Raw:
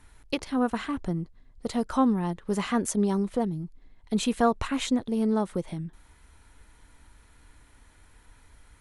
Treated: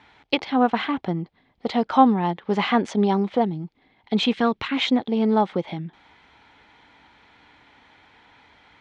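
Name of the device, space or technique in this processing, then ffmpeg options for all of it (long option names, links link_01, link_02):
kitchen radio: -filter_complex "[0:a]asettb=1/sr,asplit=3[link_01][link_02][link_03];[link_01]atrim=end=4.334[link_04];[link_02]atrim=start=4.33:end=4.77,asetpts=PTS-STARTPTS,afade=type=in:duration=0.004:curve=qsin,afade=type=out:start_time=0.436:duration=0.004:curve=qsin,equalizer=frequency=740:width_type=o:width=1.1:gain=-12[link_05];[link_03]atrim=start=4.766[link_06];[link_04][link_05]acrossfade=duration=0.004:curve1=hsin:curve2=qsin[link_07];[link_07][link_06]acrossfade=duration=0.004:curve1=qsin:curve2=hsin,highpass=170,equalizer=frequency=800:width_type=q:width=4:gain=9,equalizer=frequency=2200:width_type=q:width=4:gain=6,equalizer=frequency=3300:width_type=q:width=4:gain=6,lowpass=frequency=4600:width=0.5412,lowpass=frequency=4600:width=1.3066,volume=5.5dB"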